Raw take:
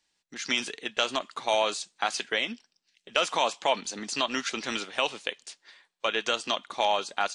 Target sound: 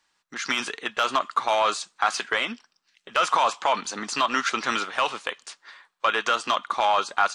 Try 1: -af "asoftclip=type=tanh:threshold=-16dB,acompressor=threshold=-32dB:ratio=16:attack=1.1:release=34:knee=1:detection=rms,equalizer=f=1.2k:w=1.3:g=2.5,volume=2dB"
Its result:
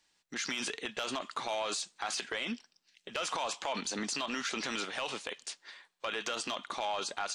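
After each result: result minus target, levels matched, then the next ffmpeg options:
compressor: peak gain reduction +8.5 dB; 1000 Hz band -4.0 dB
-af "asoftclip=type=tanh:threshold=-16dB,acompressor=threshold=-23dB:ratio=16:attack=1.1:release=34:knee=1:detection=rms,equalizer=f=1.2k:w=1.3:g=2.5,volume=2dB"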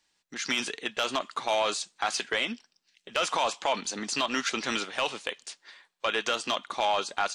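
1000 Hz band -3.0 dB
-af "asoftclip=type=tanh:threshold=-16dB,acompressor=threshold=-23dB:ratio=16:attack=1.1:release=34:knee=1:detection=rms,equalizer=f=1.2k:w=1.3:g=13,volume=2dB"

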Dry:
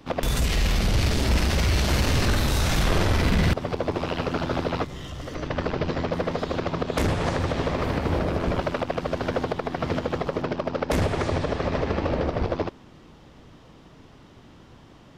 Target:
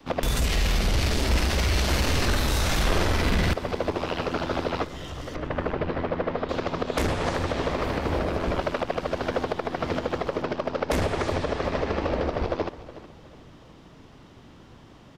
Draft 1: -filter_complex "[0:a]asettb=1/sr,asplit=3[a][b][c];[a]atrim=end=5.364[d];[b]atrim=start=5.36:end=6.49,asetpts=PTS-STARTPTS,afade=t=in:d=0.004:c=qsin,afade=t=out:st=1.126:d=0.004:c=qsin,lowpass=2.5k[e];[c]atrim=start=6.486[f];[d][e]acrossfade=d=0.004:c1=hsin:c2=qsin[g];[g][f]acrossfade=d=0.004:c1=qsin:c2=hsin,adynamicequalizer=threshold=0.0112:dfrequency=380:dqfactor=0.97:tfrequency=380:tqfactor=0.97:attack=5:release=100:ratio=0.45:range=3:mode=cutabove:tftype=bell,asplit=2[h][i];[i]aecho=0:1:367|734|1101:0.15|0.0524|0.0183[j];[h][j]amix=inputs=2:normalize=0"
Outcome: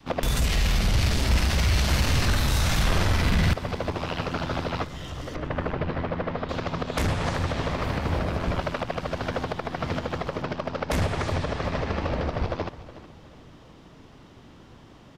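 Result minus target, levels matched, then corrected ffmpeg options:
500 Hz band -3.5 dB
-filter_complex "[0:a]asettb=1/sr,asplit=3[a][b][c];[a]atrim=end=5.364[d];[b]atrim=start=5.36:end=6.49,asetpts=PTS-STARTPTS,afade=t=in:d=0.004:c=qsin,afade=t=out:st=1.126:d=0.004:c=qsin,lowpass=2.5k[e];[c]atrim=start=6.486[f];[d][e]acrossfade=d=0.004:c1=hsin:c2=qsin[g];[g][f]acrossfade=d=0.004:c1=qsin:c2=hsin,adynamicequalizer=threshold=0.0112:dfrequency=130:dqfactor=0.97:tfrequency=130:tqfactor=0.97:attack=5:release=100:ratio=0.45:range=3:mode=cutabove:tftype=bell,asplit=2[h][i];[i]aecho=0:1:367|734|1101:0.15|0.0524|0.0183[j];[h][j]amix=inputs=2:normalize=0"

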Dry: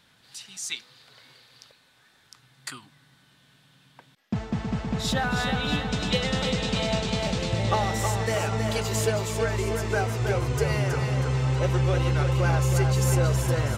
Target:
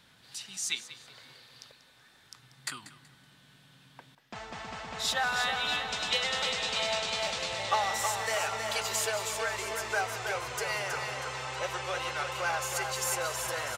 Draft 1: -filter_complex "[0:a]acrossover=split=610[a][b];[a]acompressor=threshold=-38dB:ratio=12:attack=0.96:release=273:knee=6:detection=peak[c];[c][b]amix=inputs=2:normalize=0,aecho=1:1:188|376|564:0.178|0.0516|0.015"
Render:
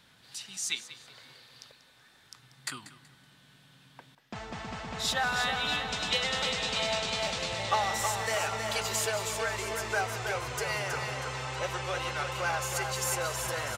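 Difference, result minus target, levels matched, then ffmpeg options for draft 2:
compressor: peak gain reduction -7 dB
-filter_complex "[0:a]acrossover=split=610[a][b];[a]acompressor=threshold=-45.5dB:ratio=12:attack=0.96:release=273:knee=6:detection=peak[c];[c][b]amix=inputs=2:normalize=0,aecho=1:1:188|376|564:0.178|0.0516|0.015"

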